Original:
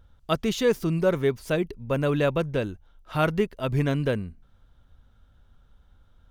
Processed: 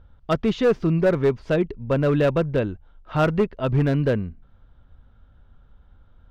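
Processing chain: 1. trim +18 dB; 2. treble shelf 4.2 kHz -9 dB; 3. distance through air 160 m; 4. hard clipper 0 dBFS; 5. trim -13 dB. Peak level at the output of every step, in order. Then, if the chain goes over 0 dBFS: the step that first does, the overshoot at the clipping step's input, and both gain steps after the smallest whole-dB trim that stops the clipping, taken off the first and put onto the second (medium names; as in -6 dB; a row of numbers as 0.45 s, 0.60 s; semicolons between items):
+9.0 dBFS, +8.5 dBFS, +7.5 dBFS, 0.0 dBFS, -13.0 dBFS; step 1, 7.5 dB; step 1 +10 dB, step 5 -5 dB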